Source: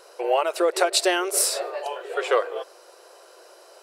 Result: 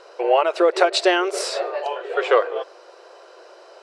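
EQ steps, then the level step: distance through air 130 m; +5.0 dB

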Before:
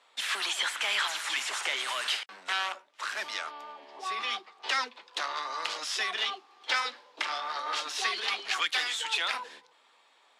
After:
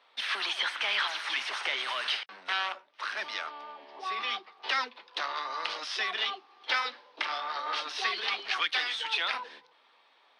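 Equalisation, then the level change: Savitzky-Golay filter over 15 samples; hum notches 50/100/150 Hz; 0.0 dB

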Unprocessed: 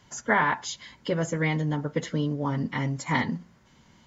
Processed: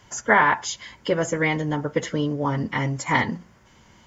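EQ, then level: graphic EQ with 31 bands 160 Hz -8 dB, 250 Hz -6 dB, 4 kHz -6 dB; +6.0 dB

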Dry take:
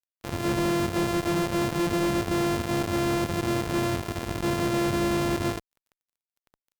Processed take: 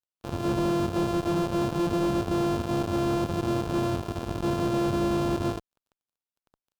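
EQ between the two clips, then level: peaking EQ 2 kHz -11.5 dB 0.45 oct; treble shelf 4.7 kHz -9.5 dB; 0.0 dB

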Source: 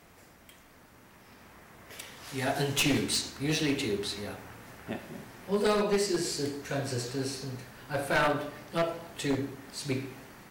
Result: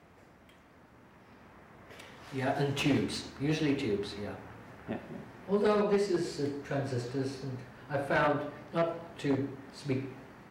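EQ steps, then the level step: high-pass 55 Hz; low-pass 1.6 kHz 6 dB/octave; 0.0 dB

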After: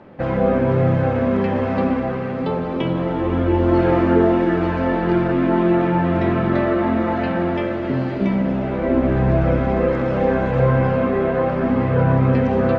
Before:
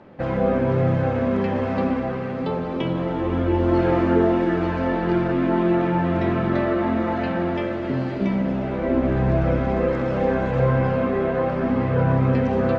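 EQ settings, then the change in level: tone controls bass 0 dB, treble -4 dB; +3.0 dB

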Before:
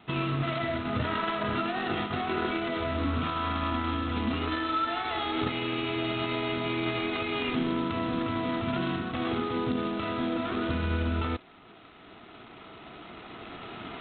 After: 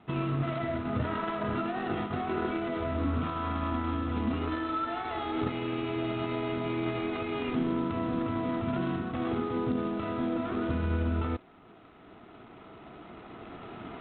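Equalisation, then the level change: low-pass 1.1 kHz 6 dB/octave; 0.0 dB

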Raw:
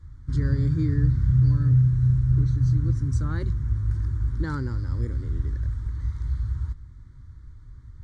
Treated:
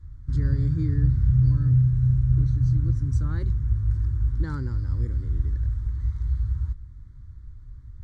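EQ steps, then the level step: bass shelf 120 Hz +9 dB; -5.0 dB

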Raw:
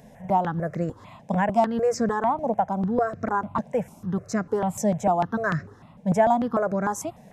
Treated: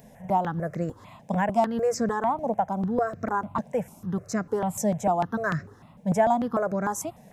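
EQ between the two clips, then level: treble shelf 10 kHz +10 dB; -2.0 dB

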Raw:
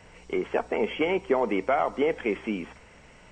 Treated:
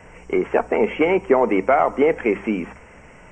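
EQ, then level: Butterworth band-stop 4 kHz, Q 1.2; treble shelf 6 kHz -6 dB; hum notches 50/100/150/200 Hz; +8.0 dB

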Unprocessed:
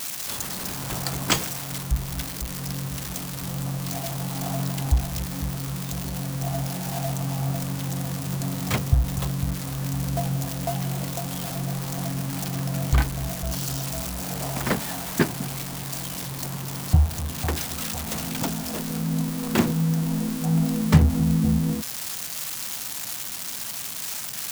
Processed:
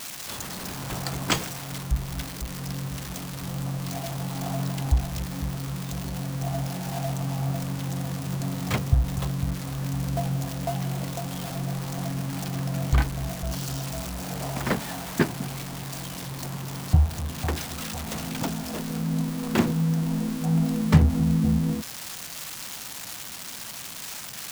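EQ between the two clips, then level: treble shelf 6.3 kHz -6.5 dB; -1.0 dB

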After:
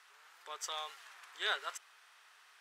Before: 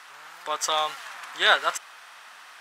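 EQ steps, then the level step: low-pass 1.3 kHz 6 dB/octave; differentiator; peaking EQ 410 Hz +13.5 dB 0.37 oct; +1.0 dB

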